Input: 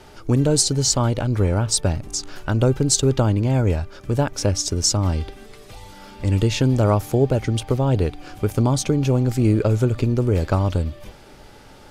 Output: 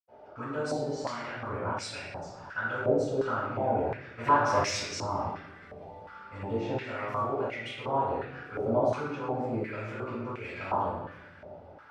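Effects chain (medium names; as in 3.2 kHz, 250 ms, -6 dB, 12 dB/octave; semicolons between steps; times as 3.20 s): 4.10–4.75 s: waveshaping leveller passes 3; reverberation RT60 1.2 s, pre-delay 77 ms; step-sequenced band-pass 2.8 Hz 640–2300 Hz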